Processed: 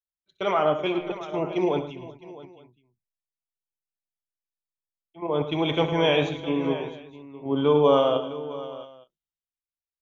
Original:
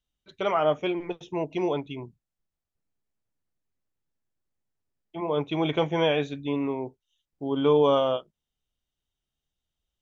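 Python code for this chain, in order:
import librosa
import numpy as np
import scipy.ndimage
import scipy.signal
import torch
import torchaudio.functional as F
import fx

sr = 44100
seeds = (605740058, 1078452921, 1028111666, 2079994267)

p1 = fx.level_steps(x, sr, step_db=15)
p2 = x + F.gain(torch.from_numpy(p1), 2.0).numpy()
p3 = fx.echo_multitap(p2, sr, ms=(66, 108, 153, 381, 662, 868), db=(-13.0, -10.0, -18.0, -15.5, -10.0, -15.5))
p4 = fx.band_widen(p3, sr, depth_pct=70)
y = F.gain(torch.from_numpy(p4), -3.5).numpy()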